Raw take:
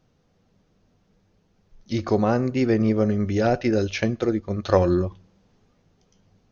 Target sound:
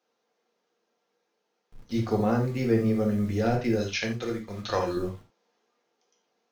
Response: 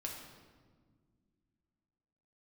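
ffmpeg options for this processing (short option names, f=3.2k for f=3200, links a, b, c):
-filter_complex "[0:a]asettb=1/sr,asplit=3[a][b][c];[a]atrim=end=3.804[d];[b]atrim=start=3.8:end=4.97,asetpts=PTS-STARTPTS,afade=t=in:d=0.004:c=qsin,afade=t=out:st=1.166:d=0.004:c=qsin,tiltshelf=f=970:g=-6.5[e];[c]atrim=start=4.966[f];[d][e]acrossfade=d=0.004:c1=hsin:c2=qsin[g];[g][f]acrossfade=d=0.004:c1=qsin:c2=hsin,acrossover=split=340[h][i];[h]acrusher=bits=7:mix=0:aa=0.000001[j];[j][i]amix=inputs=2:normalize=0[k];[1:a]atrim=start_sample=2205,atrim=end_sample=6174,asetrate=66150,aresample=44100[l];[k][l]afir=irnorm=-1:irlink=0"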